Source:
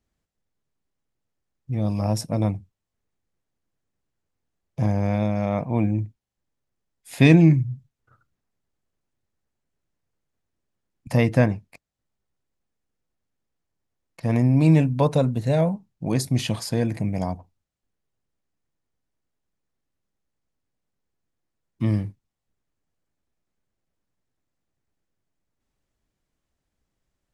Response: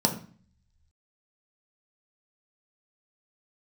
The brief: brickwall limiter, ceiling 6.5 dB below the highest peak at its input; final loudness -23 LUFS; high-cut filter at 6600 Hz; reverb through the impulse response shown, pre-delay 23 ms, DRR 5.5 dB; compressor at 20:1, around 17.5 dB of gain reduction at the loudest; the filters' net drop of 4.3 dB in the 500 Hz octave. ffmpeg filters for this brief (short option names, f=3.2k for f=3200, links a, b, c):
-filter_complex "[0:a]lowpass=6.6k,equalizer=f=500:t=o:g=-5.5,acompressor=threshold=-28dB:ratio=20,alimiter=level_in=0.5dB:limit=-24dB:level=0:latency=1,volume=-0.5dB,asplit=2[a][b];[1:a]atrim=start_sample=2205,adelay=23[c];[b][c]afir=irnorm=-1:irlink=0,volume=-17dB[d];[a][d]amix=inputs=2:normalize=0,volume=9dB"